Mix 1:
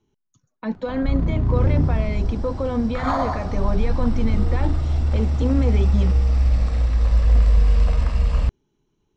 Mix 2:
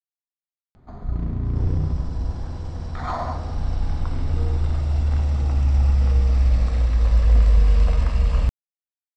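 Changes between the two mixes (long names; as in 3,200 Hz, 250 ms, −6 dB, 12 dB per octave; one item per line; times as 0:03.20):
speech: muted
first sound −4.5 dB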